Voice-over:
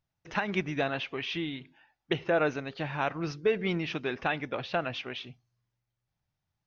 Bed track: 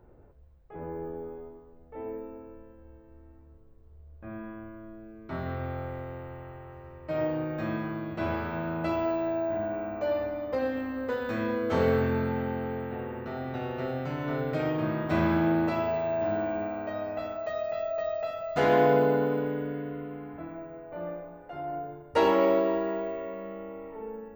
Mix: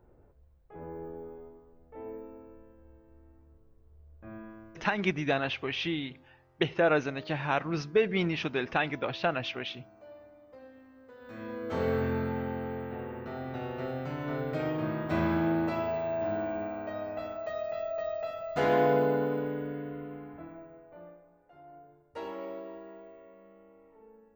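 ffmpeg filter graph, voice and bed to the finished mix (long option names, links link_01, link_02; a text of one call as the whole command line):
ffmpeg -i stem1.wav -i stem2.wav -filter_complex "[0:a]adelay=4500,volume=1.5dB[link_01];[1:a]volume=14.5dB,afade=type=out:start_time=4.35:duration=0.9:silence=0.133352,afade=type=in:start_time=11.14:duration=0.95:silence=0.112202,afade=type=out:start_time=20.14:duration=1.05:silence=0.199526[link_02];[link_01][link_02]amix=inputs=2:normalize=0" out.wav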